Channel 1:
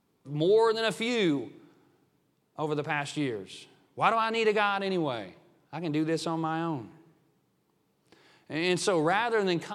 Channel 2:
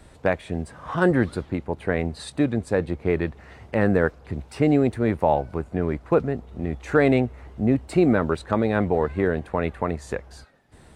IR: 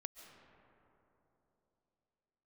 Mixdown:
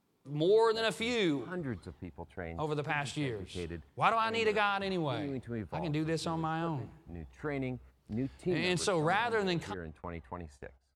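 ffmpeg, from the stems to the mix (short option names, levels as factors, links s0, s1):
-filter_complex "[0:a]asubboost=boost=7.5:cutoff=90,volume=0.708,asplit=2[s0][s1];[1:a]agate=range=0.158:threshold=0.0158:ratio=16:detection=peak,aphaser=in_gain=1:out_gain=1:delay=1.5:decay=0.34:speed=0.24:type=triangular,adelay=500,volume=0.141[s2];[s1]apad=whole_len=505201[s3];[s2][s3]sidechaincompress=threshold=0.0126:ratio=8:attack=33:release=409[s4];[s0][s4]amix=inputs=2:normalize=0"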